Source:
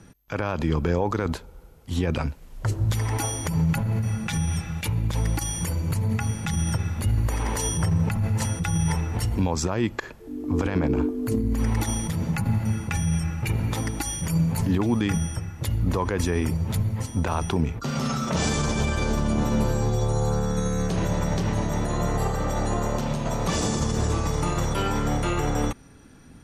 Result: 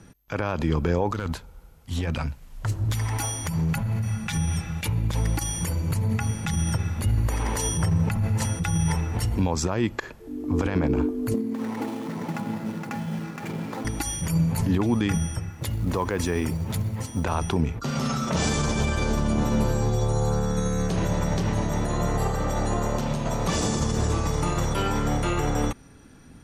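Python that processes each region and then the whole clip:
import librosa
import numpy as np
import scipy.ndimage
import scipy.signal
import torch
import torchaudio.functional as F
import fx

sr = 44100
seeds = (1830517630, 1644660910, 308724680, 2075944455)

y = fx.chain(x, sr, fx.peak_eq(hz=400.0, db=-7.5, octaves=1.2),
    fx.hum_notches(base_hz=60, count=3),
    fx.clip_hard(threshold_db=-20.0), at=(1.12, 4.35))
y = fx.chain(y, sr, fx.median_filter(points=15),
    fx.highpass(hz=190.0, slope=24),
    fx.echo_single(ms=468, db=-3.5), at=(11.34, 13.85))
y = fx.chain(y, sr, fx.low_shelf(hz=72.0, db=-8.5),
    fx.quant_float(bits=4), at=(15.52, 17.24))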